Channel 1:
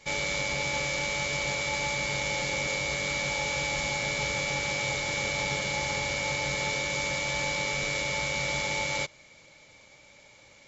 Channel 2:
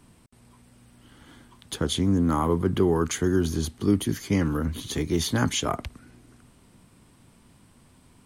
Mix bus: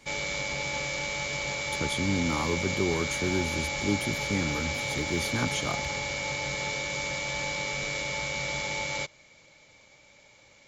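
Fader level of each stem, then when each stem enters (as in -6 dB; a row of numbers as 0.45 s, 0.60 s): -2.0 dB, -6.5 dB; 0.00 s, 0.00 s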